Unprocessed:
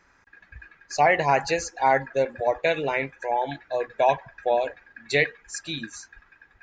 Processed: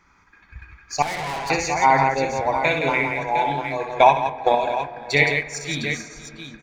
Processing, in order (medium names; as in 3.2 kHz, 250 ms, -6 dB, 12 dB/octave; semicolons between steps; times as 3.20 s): comb 0.9 ms, depth 53%; multi-tap echo 63/167/506/706 ms -6.5/-5.5/-17.5/-8.5 dB; 1.02–1.50 s: valve stage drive 29 dB, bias 0.7; in parallel at -11 dB: crossover distortion -39.5 dBFS; 3.86–4.55 s: on the sum: transient shaper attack +9 dB, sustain -6 dB; on a send at -14.5 dB: reverberation RT60 3.5 s, pre-delay 5 ms; on the sum: trim +1 dB